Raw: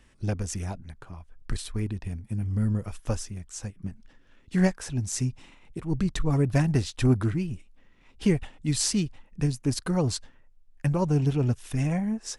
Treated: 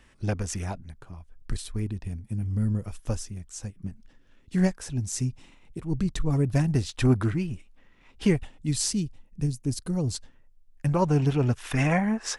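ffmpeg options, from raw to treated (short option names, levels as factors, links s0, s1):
-af "asetnsamples=n=441:p=0,asendcmd='0.78 equalizer g -4;6.89 equalizer g 3;8.36 equalizer g -5;8.93 equalizer g -12;10.15 equalizer g -4.5;10.89 equalizer g 6;11.57 equalizer g 14',equalizer=f=1400:t=o:w=3:g=4"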